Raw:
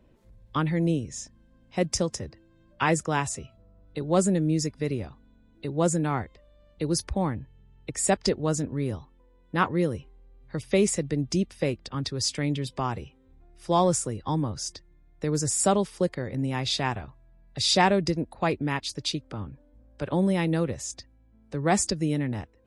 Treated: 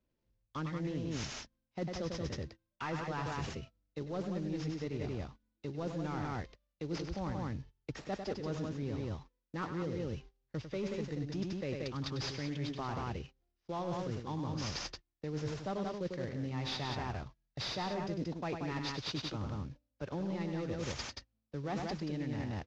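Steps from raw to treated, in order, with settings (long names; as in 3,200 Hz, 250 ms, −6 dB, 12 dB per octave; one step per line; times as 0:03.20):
variable-slope delta modulation 32 kbit/s
noise gate −45 dBFS, range −26 dB
in parallel at −1.5 dB: brickwall limiter −18.5 dBFS, peak gain reduction 7.5 dB
on the sum: soft clipping −11 dBFS, distortion −22 dB
loudspeakers that aren't time-aligned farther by 34 metres −8 dB, 62 metres −6 dB
reversed playback
downward compressor 6 to 1, threshold −34 dBFS, peak gain reduction 18 dB
reversed playback
level −2 dB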